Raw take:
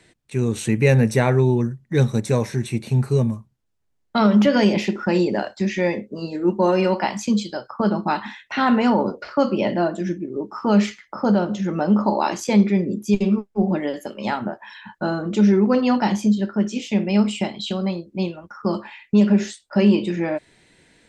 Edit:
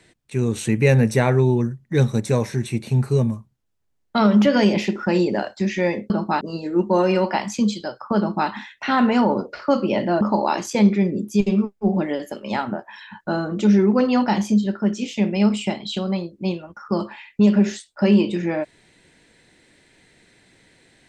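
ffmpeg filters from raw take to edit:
ffmpeg -i in.wav -filter_complex "[0:a]asplit=4[link_01][link_02][link_03][link_04];[link_01]atrim=end=6.102[link_05];[link_02]atrim=start=7.868:end=8.182[link_06];[link_03]atrim=start=6.098:end=9.902[link_07];[link_04]atrim=start=11.948[link_08];[link_05][link_06]acrossfade=duration=0.004:curve1=hsin:curve2=hsin[link_09];[link_09][link_07]acrossfade=duration=0.004:curve1=hsin:curve2=hsin[link_10];[link_10][link_08]acrossfade=duration=0.004:curve1=hsin:curve2=hsin" out.wav

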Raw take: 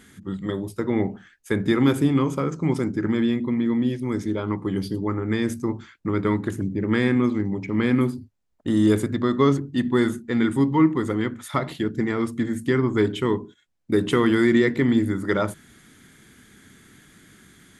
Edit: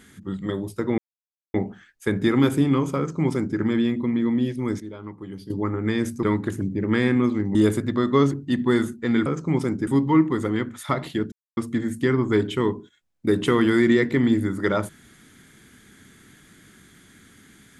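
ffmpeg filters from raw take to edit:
ffmpeg -i in.wav -filter_complex "[0:a]asplit=10[link_01][link_02][link_03][link_04][link_05][link_06][link_07][link_08][link_09][link_10];[link_01]atrim=end=0.98,asetpts=PTS-STARTPTS,afade=type=out:start_time=0.976:duration=0.004:curve=hsin,apad=pad_dur=0.56[link_11];[link_02]atrim=start=0.98:end=4.242,asetpts=PTS-STARTPTS,afade=type=in:duration=0.004:curve=hsin[link_12];[link_03]atrim=start=4.238:end=4.942,asetpts=PTS-STARTPTS,volume=-11dB[link_13];[link_04]atrim=start=4.938:end=5.672[link_14];[link_05]atrim=start=6.228:end=7.552[link_15];[link_06]atrim=start=8.808:end=10.522[link_16];[link_07]atrim=start=2.408:end=3.022[link_17];[link_08]atrim=start=10.518:end=11.97,asetpts=PTS-STARTPTS,afade=type=out:start_time=1.448:duration=0.004:curve=hsin[link_18];[link_09]atrim=start=11.97:end=12.22,asetpts=PTS-STARTPTS,volume=0[link_19];[link_10]atrim=start=12.22,asetpts=PTS-STARTPTS,afade=type=in:duration=0.004:curve=hsin[link_20];[link_11][link_12]concat=n=2:v=0:a=1[link_21];[link_21][link_13]acrossfade=duration=0.004:curve1=hsin:curve2=hsin[link_22];[link_22][link_14]acrossfade=duration=0.004:curve1=hsin:curve2=hsin[link_23];[link_23][link_15]acrossfade=duration=0.004:curve1=hsin:curve2=hsin[link_24];[link_24][link_16]acrossfade=duration=0.004:curve1=hsin:curve2=hsin[link_25];[link_25][link_17]acrossfade=duration=0.004:curve1=hsin:curve2=hsin[link_26];[link_18][link_19][link_20]concat=n=3:v=0:a=1[link_27];[link_26][link_27]acrossfade=duration=0.004:curve1=hsin:curve2=hsin" out.wav

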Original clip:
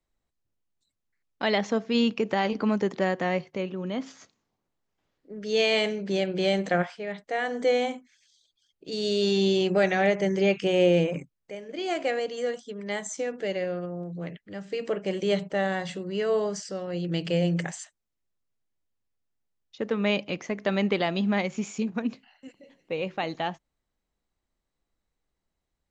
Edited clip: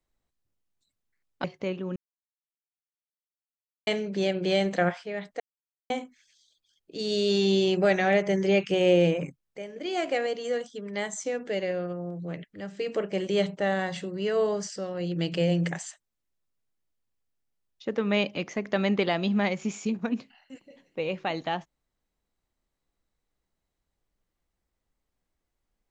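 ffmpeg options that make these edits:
ffmpeg -i in.wav -filter_complex "[0:a]asplit=6[link_01][link_02][link_03][link_04][link_05][link_06];[link_01]atrim=end=1.442[link_07];[link_02]atrim=start=3.368:end=3.89,asetpts=PTS-STARTPTS,afade=type=out:start_time=0.518:duration=0.004:curve=hsin[link_08];[link_03]atrim=start=3.89:end=5.8,asetpts=PTS-STARTPTS,volume=0[link_09];[link_04]atrim=start=5.8:end=7.33,asetpts=PTS-STARTPTS,afade=type=in:duration=0.004:curve=hsin,afade=type=out:start_time=1.526:duration=0.004:curve=hsin[link_10];[link_05]atrim=start=7.33:end=7.83,asetpts=PTS-STARTPTS,volume=0[link_11];[link_06]atrim=start=7.83,asetpts=PTS-STARTPTS,afade=type=in:duration=0.004:curve=hsin[link_12];[link_08][link_09][link_10][link_11][link_12]concat=n=5:v=0:a=1[link_13];[link_07][link_13]acrossfade=duration=0.004:curve1=hsin:curve2=hsin" out.wav

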